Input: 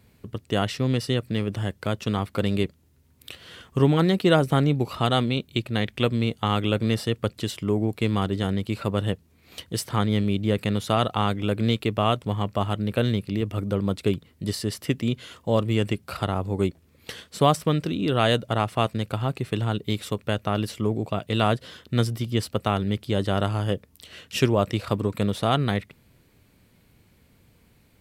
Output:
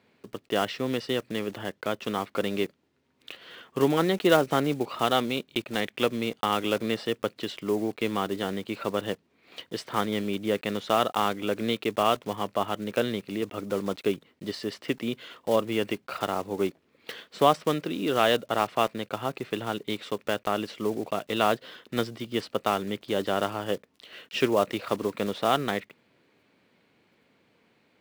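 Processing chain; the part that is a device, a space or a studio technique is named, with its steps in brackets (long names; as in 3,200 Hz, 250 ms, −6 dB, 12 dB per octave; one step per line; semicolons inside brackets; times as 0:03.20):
early digital voice recorder (band-pass filter 290–3,700 Hz; one scale factor per block 5 bits)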